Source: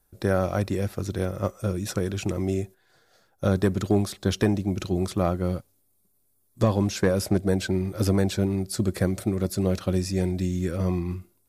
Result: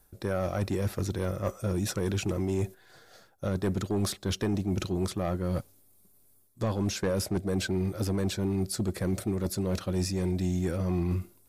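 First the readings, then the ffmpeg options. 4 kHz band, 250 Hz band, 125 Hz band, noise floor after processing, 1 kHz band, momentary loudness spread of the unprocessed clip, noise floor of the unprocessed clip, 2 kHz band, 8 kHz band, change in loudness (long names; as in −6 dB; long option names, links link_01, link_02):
−1.5 dB, −4.5 dB, −4.0 dB, −61 dBFS, −5.0 dB, 6 LU, −67 dBFS, −4.5 dB, −1.5 dB, −4.5 dB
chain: -af "areverse,acompressor=threshold=-30dB:ratio=6,areverse,asoftclip=type=tanh:threshold=-26.5dB,volume=6.5dB"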